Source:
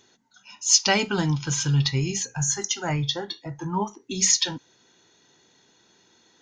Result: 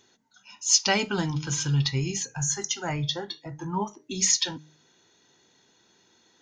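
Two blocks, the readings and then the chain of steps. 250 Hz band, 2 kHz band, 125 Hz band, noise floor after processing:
-3.0 dB, -2.5 dB, -3.0 dB, -64 dBFS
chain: de-hum 153.3 Hz, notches 4; gain -2.5 dB

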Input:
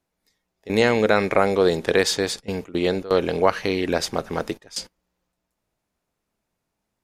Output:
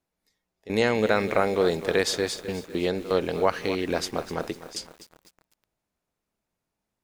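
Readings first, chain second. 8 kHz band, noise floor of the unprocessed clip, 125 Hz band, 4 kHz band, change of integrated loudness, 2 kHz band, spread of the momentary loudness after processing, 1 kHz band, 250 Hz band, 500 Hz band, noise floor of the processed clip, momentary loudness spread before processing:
-4.0 dB, -80 dBFS, -4.0 dB, -4.5 dB, -4.0 dB, -4.0 dB, 11 LU, -4.0 dB, -4.0 dB, -4.0 dB, -84 dBFS, 11 LU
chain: lo-fi delay 0.251 s, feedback 55%, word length 6-bit, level -13 dB; gain -4.5 dB

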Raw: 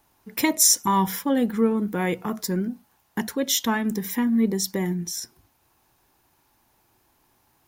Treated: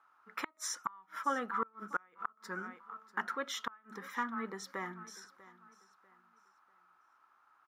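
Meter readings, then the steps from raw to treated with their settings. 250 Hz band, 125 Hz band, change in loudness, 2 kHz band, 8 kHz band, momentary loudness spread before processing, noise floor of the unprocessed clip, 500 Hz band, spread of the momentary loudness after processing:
-23.5 dB, -25.5 dB, -16.5 dB, -7.5 dB, -22.5 dB, 15 LU, -66 dBFS, -17.5 dB, 14 LU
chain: band-pass 1300 Hz, Q 13; feedback echo 0.644 s, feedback 32%, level -19 dB; flipped gate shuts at -36 dBFS, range -33 dB; gain +15 dB

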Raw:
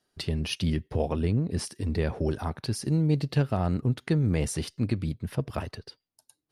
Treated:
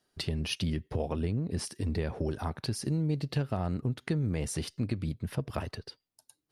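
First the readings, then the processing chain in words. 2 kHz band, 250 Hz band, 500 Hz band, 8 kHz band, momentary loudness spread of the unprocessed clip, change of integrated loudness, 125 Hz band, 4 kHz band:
-3.0 dB, -4.5 dB, -5.0 dB, -2.5 dB, 7 LU, -4.5 dB, -5.0 dB, -1.5 dB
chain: compressor 2.5:1, threshold -29 dBFS, peak gain reduction 7 dB

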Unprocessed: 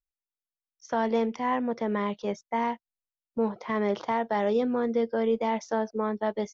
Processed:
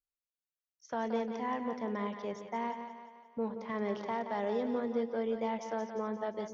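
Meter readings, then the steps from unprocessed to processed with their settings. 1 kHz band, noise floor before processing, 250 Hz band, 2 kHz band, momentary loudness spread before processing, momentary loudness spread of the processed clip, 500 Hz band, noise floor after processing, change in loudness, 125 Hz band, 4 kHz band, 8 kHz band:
-7.5 dB, under -85 dBFS, -7.5 dB, -8.0 dB, 5 LU, 7 LU, -7.5 dB, under -85 dBFS, -7.5 dB, -7.5 dB, -7.5 dB, n/a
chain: added harmonics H 5 -43 dB, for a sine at -15.5 dBFS; split-band echo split 440 Hz, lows 0.12 s, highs 0.175 s, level -8 dB; gain -8.5 dB

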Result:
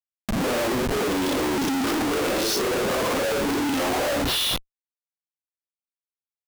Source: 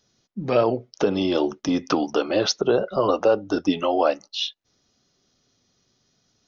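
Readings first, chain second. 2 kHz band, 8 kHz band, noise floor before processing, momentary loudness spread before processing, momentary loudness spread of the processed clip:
+6.5 dB, n/a, -69 dBFS, 7 LU, 2 LU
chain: phase scrambler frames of 0.2 s; hard clip -18.5 dBFS, distortion -12 dB; resonant low shelf 190 Hz -7.5 dB, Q 3; Schmitt trigger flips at -40.5 dBFS; mismatched tape noise reduction encoder only

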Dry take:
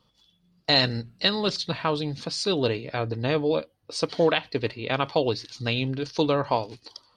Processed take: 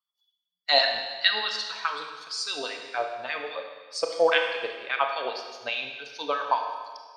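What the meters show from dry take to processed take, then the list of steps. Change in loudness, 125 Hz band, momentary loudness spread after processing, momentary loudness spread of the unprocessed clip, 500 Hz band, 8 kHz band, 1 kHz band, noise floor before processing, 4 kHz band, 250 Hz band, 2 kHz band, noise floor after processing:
-1.5 dB, under -30 dB, 14 LU, 8 LU, -3.5 dB, -0.5 dB, +2.0 dB, -68 dBFS, 0.0 dB, -18.0 dB, +3.5 dB, -85 dBFS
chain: per-bin expansion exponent 1.5; LFO high-pass sine 4.9 Hz 590–1800 Hz; Schroeder reverb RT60 1.5 s, combs from 25 ms, DRR 3.5 dB

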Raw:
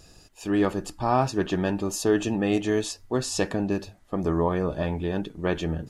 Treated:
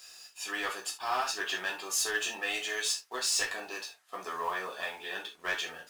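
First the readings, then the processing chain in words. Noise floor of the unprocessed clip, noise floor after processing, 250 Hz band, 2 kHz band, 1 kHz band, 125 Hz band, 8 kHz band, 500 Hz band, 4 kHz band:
-54 dBFS, -61 dBFS, -24.5 dB, +3.5 dB, -5.5 dB, under -30 dB, +3.0 dB, -15.0 dB, +4.0 dB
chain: HPF 1400 Hz 12 dB/oct; in parallel at -7.5 dB: companded quantiser 4-bit; on the sum: soft clip -24.5 dBFS, distortion -14 dB; non-linear reverb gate 0.1 s falling, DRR -1.5 dB; gain -1.5 dB

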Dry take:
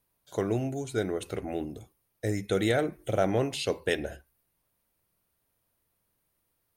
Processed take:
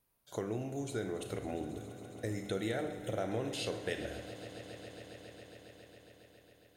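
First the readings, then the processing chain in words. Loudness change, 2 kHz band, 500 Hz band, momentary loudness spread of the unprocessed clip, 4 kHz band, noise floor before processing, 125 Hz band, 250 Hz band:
-9.0 dB, -8.0 dB, -8.5 dB, 10 LU, -6.5 dB, -77 dBFS, -8.0 dB, -7.5 dB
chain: Schroeder reverb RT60 0.71 s, combs from 25 ms, DRR 7.5 dB; compressor 2.5:1, threshold -34 dBFS, peak gain reduction 10 dB; swelling echo 0.137 s, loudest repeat 5, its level -18 dB; gain -2.5 dB

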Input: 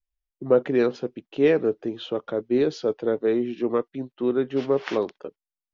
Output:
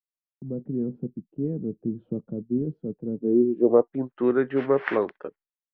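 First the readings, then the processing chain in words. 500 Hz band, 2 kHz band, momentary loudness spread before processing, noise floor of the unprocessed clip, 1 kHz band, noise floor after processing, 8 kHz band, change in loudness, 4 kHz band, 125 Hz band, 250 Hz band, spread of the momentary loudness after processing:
-2.5 dB, -0.5 dB, 12 LU, under -85 dBFS, 0.0 dB, under -85 dBFS, n/a, -1.5 dB, under -10 dB, +3.0 dB, +0.5 dB, 15 LU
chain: vocal rider within 5 dB 0.5 s; low-pass sweep 190 Hz -> 1800 Hz, 3.13–4.23; expander -48 dBFS

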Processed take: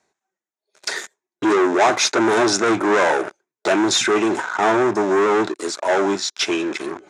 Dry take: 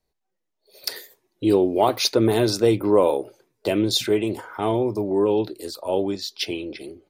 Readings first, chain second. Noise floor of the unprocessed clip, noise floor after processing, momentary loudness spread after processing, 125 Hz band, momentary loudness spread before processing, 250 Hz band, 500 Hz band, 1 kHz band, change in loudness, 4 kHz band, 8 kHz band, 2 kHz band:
-78 dBFS, under -85 dBFS, 11 LU, -7.0 dB, 13 LU, +2.5 dB, +2.0 dB, +8.5 dB, +3.5 dB, +3.0 dB, +9.0 dB, +14.5 dB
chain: dynamic EQ 880 Hz, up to +3 dB, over -31 dBFS, Q 0.95; sample leveller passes 5; reverse; upward compressor, threshold -15 dBFS; reverse; speaker cabinet 270–7600 Hz, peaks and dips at 280 Hz -4 dB, 500 Hz -10 dB, 1500 Hz +5 dB, 3000 Hz -6 dB, 4500 Hz -10 dB, 6900 Hz +5 dB; gain -5 dB

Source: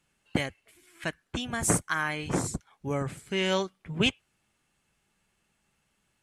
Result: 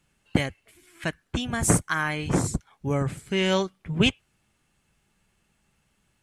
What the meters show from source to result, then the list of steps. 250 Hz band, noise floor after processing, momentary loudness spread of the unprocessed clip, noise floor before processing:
+5.5 dB, -71 dBFS, 10 LU, -75 dBFS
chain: low shelf 200 Hz +6.5 dB; gain +2.5 dB

